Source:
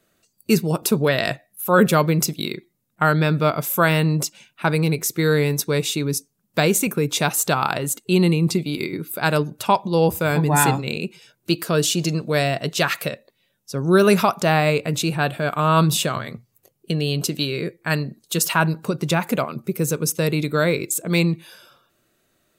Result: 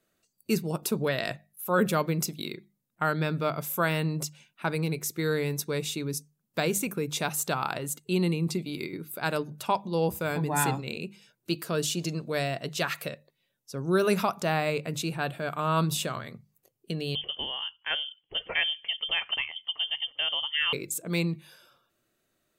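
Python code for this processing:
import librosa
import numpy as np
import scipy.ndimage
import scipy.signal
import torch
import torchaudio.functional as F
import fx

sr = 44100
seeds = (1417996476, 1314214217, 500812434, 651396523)

y = fx.freq_invert(x, sr, carrier_hz=3300, at=(17.15, 20.73))
y = fx.hum_notches(y, sr, base_hz=50, count=4)
y = y * 10.0 ** (-9.0 / 20.0)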